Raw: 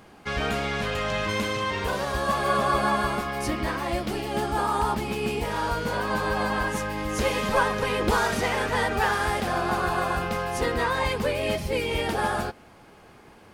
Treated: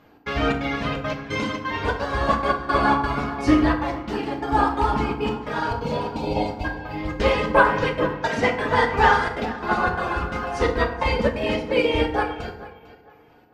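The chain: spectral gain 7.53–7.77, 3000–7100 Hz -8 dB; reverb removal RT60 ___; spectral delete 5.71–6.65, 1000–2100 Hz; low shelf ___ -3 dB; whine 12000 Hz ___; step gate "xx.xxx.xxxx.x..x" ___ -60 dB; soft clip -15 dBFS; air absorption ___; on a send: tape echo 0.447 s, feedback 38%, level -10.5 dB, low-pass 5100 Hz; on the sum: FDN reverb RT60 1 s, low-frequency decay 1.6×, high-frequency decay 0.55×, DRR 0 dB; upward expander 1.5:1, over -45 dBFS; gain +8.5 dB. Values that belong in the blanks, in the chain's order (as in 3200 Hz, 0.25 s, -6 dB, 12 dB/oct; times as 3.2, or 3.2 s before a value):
1.5 s, 170 Hz, -47 dBFS, 173 bpm, 120 m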